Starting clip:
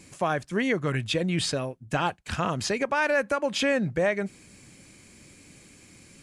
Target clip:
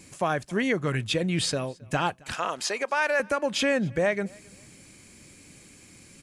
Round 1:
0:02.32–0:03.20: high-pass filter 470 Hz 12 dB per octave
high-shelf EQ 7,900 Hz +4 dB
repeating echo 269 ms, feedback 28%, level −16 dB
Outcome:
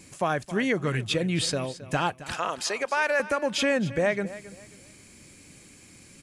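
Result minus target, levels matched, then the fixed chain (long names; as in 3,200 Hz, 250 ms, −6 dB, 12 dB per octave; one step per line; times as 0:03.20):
echo-to-direct +10.5 dB
0:02.32–0:03.20: high-pass filter 470 Hz 12 dB per octave
high-shelf EQ 7,900 Hz +4 dB
repeating echo 269 ms, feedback 28%, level −26.5 dB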